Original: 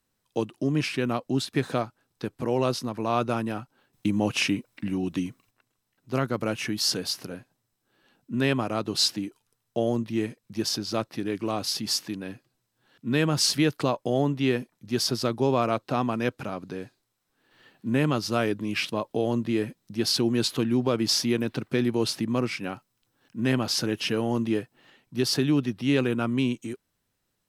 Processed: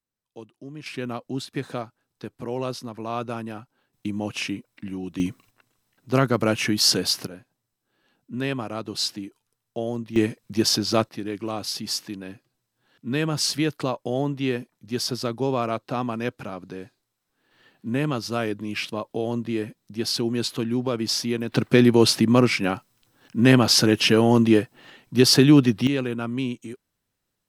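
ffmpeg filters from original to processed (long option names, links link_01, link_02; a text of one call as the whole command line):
ffmpeg -i in.wav -af "asetnsamples=nb_out_samples=441:pad=0,asendcmd='0.86 volume volume -4dB;5.2 volume volume 6.5dB;7.27 volume volume -3dB;10.16 volume volume 7dB;11.09 volume volume -1dB;21.52 volume volume 9dB;25.87 volume volume -2dB',volume=-14dB" out.wav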